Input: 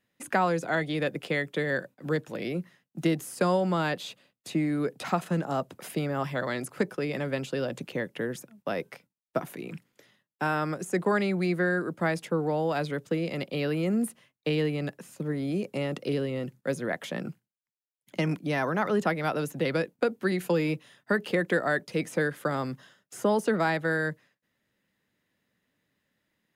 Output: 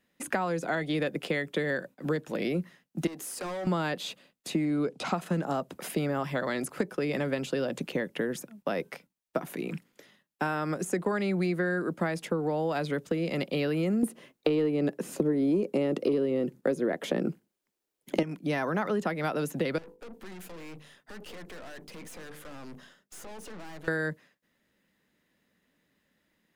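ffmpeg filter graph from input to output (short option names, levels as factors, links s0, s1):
-filter_complex "[0:a]asettb=1/sr,asplit=3[s0][s1][s2];[s0]atrim=end=3.074[s3];[s1]atrim=start=3.07:end=3.67,asetpts=PTS-STARTPTS,afade=t=in:d=0.004:c=qsin,afade=t=out:st=0.596:d=0.004:c=qsin,highpass=280,acompressor=threshold=0.02:ratio=2.5:attack=3.2:release=140:knee=1:detection=peak,asoftclip=type=hard:threshold=0.015[s4];[s2]atrim=start=3.666[s5];[s3][s4]acrossfade=d=0.004:c1=hsin:c2=qsin[s6];[s6][s5]acrossfade=d=0.004:c1=qsin:c2=hsin,asettb=1/sr,asplit=3[s7][s8][s9];[s7]atrim=end=4.654[s10];[s8]atrim=start=4.65:end=5.14,asetpts=PTS-STARTPTS,afade=t=in:d=0.004:c=qsin,afade=t=out:st=0.486:d=0.004:c=qsin,lowpass=7800,equalizer=f=1800:t=o:w=0.2:g=-12[s11];[s9]atrim=start=5.136[s12];[s10][s11]acrossfade=d=0.004:c1=hsin:c2=qsin[s13];[s13][s12]acrossfade=d=0.004:c1=qsin:c2=hsin,asettb=1/sr,asplit=3[s14][s15][s16];[s14]atrim=end=14.034[s17];[s15]atrim=start=14.03:end=18.23,asetpts=PTS-STARTPTS,afade=t=in:d=0.004:c=qsin,afade=t=out:st=4.196:d=0.004:c=qsin,equalizer=f=370:t=o:w=1.6:g=11.5,acontrast=52[s18];[s16]atrim=start=18.226[s19];[s17][s18]acrossfade=d=0.004:c1=hsin:c2=qsin[s20];[s20][s19]acrossfade=d=0.004:c1=qsin:c2=hsin,asettb=1/sr,asplit=3[s21][s22][s23];[s21]atrim=end=19.784[s24];[s22]atrim=start=19.78:end=23.88,asetpts=PTS-STARTPTS,afade=t=in:d=0.004:c=qsin,afade=t=out:st=4.096:d=0.004:c=qsin,acompressor=threshold=0.0224:ratio=4:attack=3.2:release=140:knee=1:detection=peak,bandreject=f=50:t=h:w=6,bandreject=f=100:t=h:w=6,bandreject=f=150:t=h:w=6,bandreject=f=200:t=h:w=6,bandreject=f=250:t=h:w=6,bandreject=f=300:t=h:w=6,bandreject=f=350:t=h:w=6,bandreject=f=400:t=h:w=6,bandreject=f=450:t=h:w=6,bandreject=f=500:t=h:w=6,aeval=exprs='(tanh(224*val(0)+0.55)-tanh(0.55))/224':c=same[s25];[s23]atrim=start=23.876[s26];[s24][s25]acrossfade=d=0.004:c1=hsin:c2=qsin[s27];[s27][s26]acrossfade=d=0.004:c1=qsin:c2=hsin,equalizer=f=110:w=2.7:g=-14,acompressor=threshold=0.0316:ratio=6,lowshelf=f=290:g=4.5,volume=1.41"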